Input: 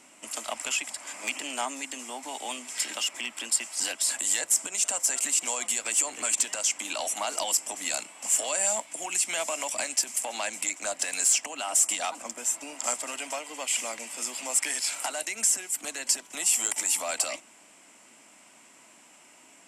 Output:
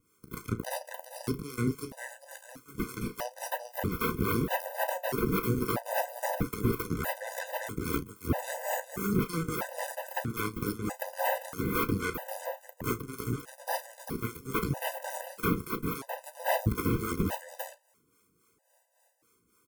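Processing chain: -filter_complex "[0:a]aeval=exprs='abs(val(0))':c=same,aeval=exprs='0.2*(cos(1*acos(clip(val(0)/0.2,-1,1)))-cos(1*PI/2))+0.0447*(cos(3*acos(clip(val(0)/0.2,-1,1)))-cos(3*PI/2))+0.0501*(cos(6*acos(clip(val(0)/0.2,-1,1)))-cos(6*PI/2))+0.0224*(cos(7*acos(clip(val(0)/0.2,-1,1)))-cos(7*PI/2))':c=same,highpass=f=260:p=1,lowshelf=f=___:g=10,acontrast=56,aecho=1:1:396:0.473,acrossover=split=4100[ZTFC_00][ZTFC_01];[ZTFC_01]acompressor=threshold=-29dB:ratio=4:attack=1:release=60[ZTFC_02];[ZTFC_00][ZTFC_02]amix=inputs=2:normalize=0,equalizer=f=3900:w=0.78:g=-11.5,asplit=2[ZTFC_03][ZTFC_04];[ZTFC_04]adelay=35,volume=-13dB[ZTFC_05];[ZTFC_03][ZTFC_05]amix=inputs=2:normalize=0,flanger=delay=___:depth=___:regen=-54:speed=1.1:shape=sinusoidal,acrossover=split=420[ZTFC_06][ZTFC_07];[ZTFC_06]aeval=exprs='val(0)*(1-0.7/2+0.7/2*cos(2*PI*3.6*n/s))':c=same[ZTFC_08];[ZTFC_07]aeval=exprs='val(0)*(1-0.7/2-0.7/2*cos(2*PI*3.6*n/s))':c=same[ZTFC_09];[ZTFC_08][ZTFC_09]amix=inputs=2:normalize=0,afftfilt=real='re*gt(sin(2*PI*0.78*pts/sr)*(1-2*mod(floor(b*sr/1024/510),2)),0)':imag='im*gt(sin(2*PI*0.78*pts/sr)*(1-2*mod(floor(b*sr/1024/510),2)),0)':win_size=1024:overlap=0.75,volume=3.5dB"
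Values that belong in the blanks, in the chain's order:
460, 9.9, 8.8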